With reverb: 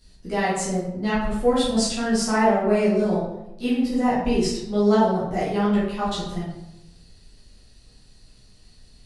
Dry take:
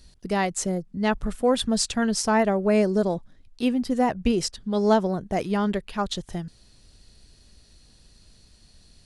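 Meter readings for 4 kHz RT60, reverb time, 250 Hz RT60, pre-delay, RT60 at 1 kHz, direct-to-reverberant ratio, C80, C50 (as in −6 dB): 0.60 s, 0.90 s, 1.1 s, 8 ms, 0.85 s, −10.0 dB, 5.0 dB, 0.5 dB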